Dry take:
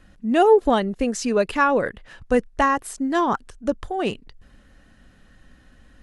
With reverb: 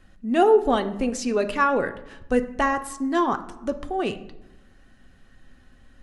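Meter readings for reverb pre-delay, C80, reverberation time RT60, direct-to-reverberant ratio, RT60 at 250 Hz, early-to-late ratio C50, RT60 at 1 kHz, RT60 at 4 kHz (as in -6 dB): 3 ms, 16.5 dB, 0.95 s, 7.0 dB, 1.2 s, 13.5 dB, 0.90 s, 0.55 s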